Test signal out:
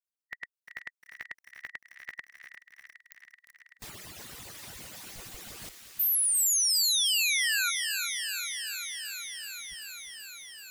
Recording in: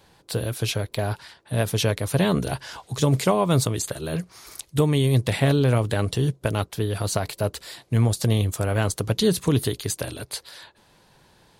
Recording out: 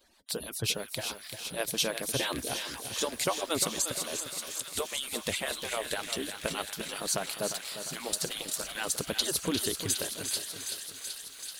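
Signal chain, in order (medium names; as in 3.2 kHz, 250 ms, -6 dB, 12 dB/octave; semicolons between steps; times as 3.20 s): harmonic-percussive separation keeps percussive; treble shelf 2.1 kHz +8 dB; on a send: feedback echo behind a high-pass 382 ms, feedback 80%, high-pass 1.6 kHz, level -8 dB; on the sum: bit-crushed delay 352 ms, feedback 55%, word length 7-bit, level -9.5 dB; trim -8 dB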